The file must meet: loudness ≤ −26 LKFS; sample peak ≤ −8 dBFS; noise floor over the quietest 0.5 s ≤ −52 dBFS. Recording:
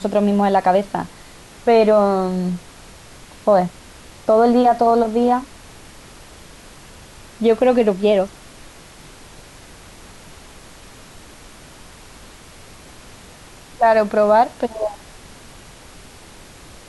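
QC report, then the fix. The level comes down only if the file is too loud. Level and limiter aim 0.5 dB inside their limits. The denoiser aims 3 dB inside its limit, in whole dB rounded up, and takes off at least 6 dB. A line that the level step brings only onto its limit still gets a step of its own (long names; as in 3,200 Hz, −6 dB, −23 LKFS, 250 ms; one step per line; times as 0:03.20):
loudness −17.0 LKFS: out of spec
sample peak −5.0 dBFS: out of spec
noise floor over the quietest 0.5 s −42 dBFS: out of spec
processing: broadband denoise 6 dB, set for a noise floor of −42 dBFS
level −9.5 dB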